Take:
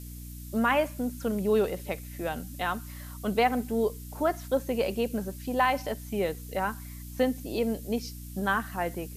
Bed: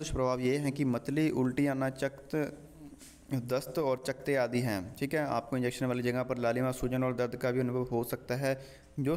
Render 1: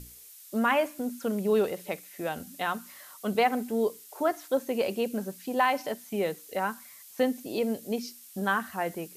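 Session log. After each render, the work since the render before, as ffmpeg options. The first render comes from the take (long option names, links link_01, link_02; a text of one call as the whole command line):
ffmpeg -i in.wav -af "bandreject=frequency=60:width_type=h:width=6,bandreject=frequency=120:width_type=h:width=6,bandreject=frequency=180:width_type=h:width=6,bandreject=frequency=240:width_type=h:width=6,bandreject=frequency=300:width_type=h:width=6" out.wav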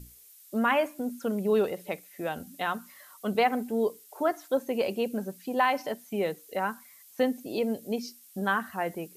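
ffmpeg -i in.wav -af "afftdn=noise_reduction=6:noise_floor=-50" out.wav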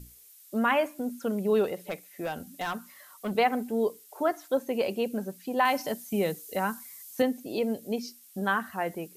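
ffmpeg -i in.wav -filter_complex "[0:a]asettb=1/sr,asplit=3[link_01][link_02][link_03];[link_01]atrim=end=1.884[link_04];[link_02]atrim=start=1.88:end=3.34,asetpts=PTS-STARTPTS,afade=type=in:duration=0.004:curve=qsin,afade=type=out:start_time=1.456:duration=0.004:curve=qsin,asoftclip=type=hard:threshold=-27dB[link_05];[link_03]atrim=start=3.336[link_06];[link_04][link_05]acrossfade=duration=0.004:curve1=hsin:curve2=qsin[link_07];[link_07][link_06]acrossfade=duration=0.004:curve1=qsin:curve2=hsin,asettb=1/sr,asplit=3[link_08][link_09][link_10];[link_08]atrim=end=5.654[link_11];[link_09]atrim=start=5.65:end=7.22,asetpts=PTS-STARTPTS,afade=type=in:duration=0.004:curve=qsin,afade=type=out:start_time=1.566:duration=0.004:curve=qsin,bass=frequency=250:gain=7,treble=frequency=4000:gain=8[link_12];[link_10]atrim=start=7.216[link_13];[link_11][link_12]acrossfade=duration=0.004:curve1=hsin:curve2=qsin[link_14];[link_14][link_13]acrossfade=duration=0.004:curve1=qsin:curve2=hsin" out.wav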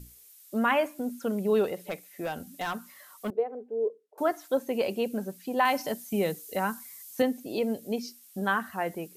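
ffmpeg -i in.wav -filter_complex "[0:a]asettb=1/sr,asplit=3[link_01][link_02][link_03];[link_01]atrim=end=3.304[link_04];[link_02]atrim=start=3.3:end=4.18,asetpts=PTS-STARTPTS,afade=type=in:duration=0.004:curve=qsin,afade=type=out:start_time=0.876:duration=0.004:curve=qsin,bandpass=frequency=450:width_type=q:width=4.7[link_05];[link_03]atrim=start=4.176[link_06];[link_04][link_05]acrossfade=duration=0.004:curve1=hsin:curve2=qsin[link_07];[link_07][link_06]acrossfade=duration=0.004:curve1=qsin:curve2=hsin" out.wav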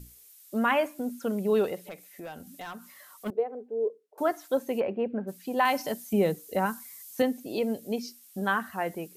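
ffmpeg -i in.wav -filter_complex "[0:a]asplit=3[link_01][link_02][link_03];[link_01]afade=type=out:start_time=1.79:duration=0.02[link_04];[link_02]acompressor=threshold=-43dB:ratio=2:attack=3.2:release=140:knee=1:detection=peak,afade=type=in:start_time=1.79:duration=0.02,afade=type=out:start_time=3.25:duration=0.02[link_05];[link_03]afade=type=in:start_time=3.25:duration=0.02[link_06];[link_04][link_05][link_06]amix=inputs=3:normalize=0,asplit=3[link_07][link_08][link_09];[link_07]afade=type=out:start_time=4.79:duration=0.02[link_10];[link_08]lowpass=frequency=2100:width=0.5412,lowpass=frequency=2100:width=1.3066,afade=type=in:start_time=4.79:duration=0.02,afade=type=out:start_time=5.27:duration=0.02[link_11];[link_09]afade=type=in:start_time=5.27:duration=0.02[link_12];[link_10][link_11][link_12]amix=inputs=3:normalize=0,asettb=1/sr,asplit=3[link_13][link_14][link_15];[link_13]atrim=end=6.134[link_16];[link_14]atrim=start=6.13:end=6.66,asetpts=PTS-STARTPTS,afade=type=in:duration=0.004:curve=qsin,afade=type=out:start_time=0.526:duration=0.004:curve=qsin,tiltshelf=frequency=1400:gain=4[link_17];[link_15]atrim=start=6.656[link_18];[link_16][link_17]acrossfade=duration=0.004:curve1=hsin:curve2=qsin[link_19];[link_19][link_18]acrossfade=duration=0.004:curve1=qsin:curve2=hsin" out.wav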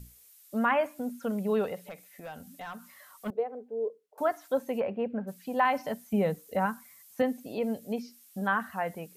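ffmpeg -i in.wav -filter_complex "[0:a]acrossover=split=2500[link_01][link_02];[link_02]acompressor=threshold=-52dB:ratio=4:attack=1:release=60[link_03];[link_01][link_03]amix=inputs=2:normalize=0,equalizer=frequency=350:width=3.4:gain=-11" out.wav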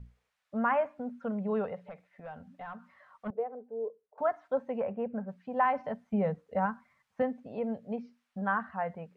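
ffmpeg -i in.wav -af "lowpass=1500,equalizer=frequency=330:width_type=o:width=0.57:gain=-11.5" out.wav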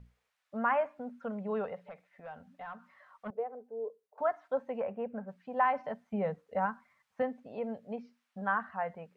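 ffmpeg -i in.wav -af "lowshelf=frequency=300:gain=-8" out.wav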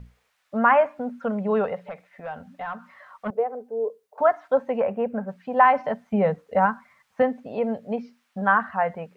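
ffmpeg -i in.wav -af "volume=11.5dB" out.wav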